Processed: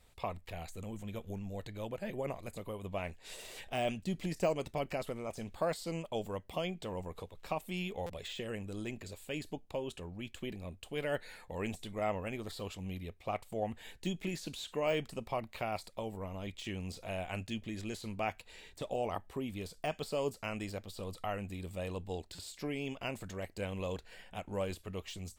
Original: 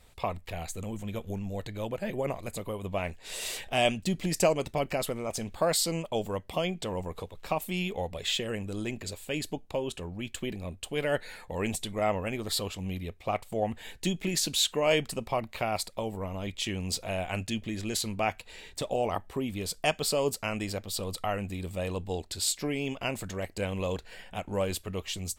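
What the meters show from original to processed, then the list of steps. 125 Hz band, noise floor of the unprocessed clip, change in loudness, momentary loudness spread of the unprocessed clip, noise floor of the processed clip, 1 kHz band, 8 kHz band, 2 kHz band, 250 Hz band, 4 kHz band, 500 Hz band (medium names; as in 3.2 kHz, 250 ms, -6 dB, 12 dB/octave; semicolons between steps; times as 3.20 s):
-6.5 dB, -53 dBFS, -8.0 dB, 10 LU, -59 dBFS, -7.0 dB, -17.0 dB, -8.0 dB, -6.5 dB, -12.5 dB, -6.5 dB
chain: de-esser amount 90%; buffer glitch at 8.06/22.35 s, samples 256, times 5; trim -6.5 dB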